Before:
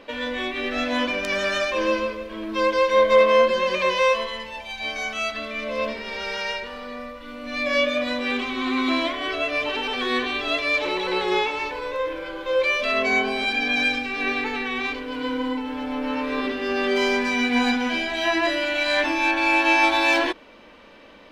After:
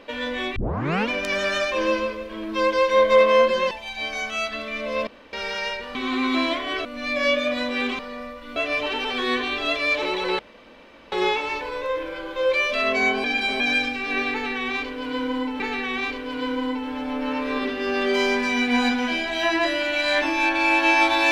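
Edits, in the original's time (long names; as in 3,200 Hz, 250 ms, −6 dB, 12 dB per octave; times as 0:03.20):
0:00.56: tape start 0.53 s
0:03.71–0:04.54: remove
0:05.90–0:06.16: fill with room tone
0:06.78–0:07.35: swap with 0:08.49–0:09.39
0:11.22: splice in room tone 0.73 s
0:13.34–0:13.70: reverse
0:14.42–0:15.70: repeat, 2 plays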